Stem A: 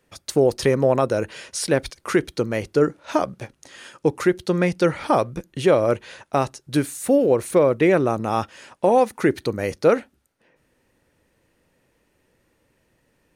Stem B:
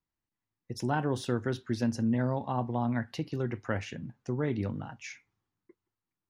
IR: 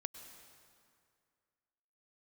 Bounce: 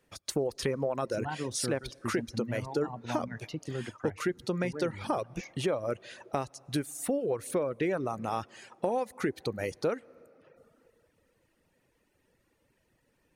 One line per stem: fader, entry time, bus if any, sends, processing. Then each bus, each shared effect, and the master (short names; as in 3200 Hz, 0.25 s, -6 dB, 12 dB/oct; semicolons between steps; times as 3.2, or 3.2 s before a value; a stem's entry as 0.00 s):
-7.0 dB, 0.00 s, send -6.5 dB, dry
-2.5 dB, 0.35 s, no send, dry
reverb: on, RT60 2.2 s, pre-delay 93 ms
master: reverb removal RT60 0.84 s; compressor 3:1, threshold -29 dBFS, peak gain reduction 10.5 dB